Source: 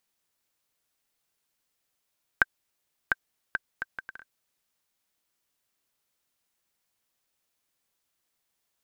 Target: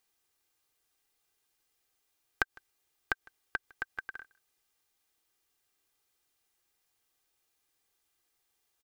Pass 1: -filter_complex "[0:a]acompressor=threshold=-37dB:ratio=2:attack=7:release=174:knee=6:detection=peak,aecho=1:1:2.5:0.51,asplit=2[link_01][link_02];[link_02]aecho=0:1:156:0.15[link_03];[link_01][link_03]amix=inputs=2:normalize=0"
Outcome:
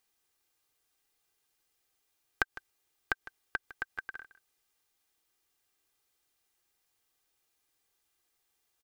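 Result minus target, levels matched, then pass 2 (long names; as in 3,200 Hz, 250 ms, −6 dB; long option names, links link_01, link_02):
echo-to-direct +9 dB
-filter_complex "[0:a]acompressor=threshold=-37dB:ratio=2:attack=7:release=174:knee=6:detection=peak,aecho=1:1:2.5:0.51,asplit=2[link_01][link_02];[link_02]aecho=0:1:156:0.0531[link_03];[link_01][link_03]amix=inputs=2:normalize=0"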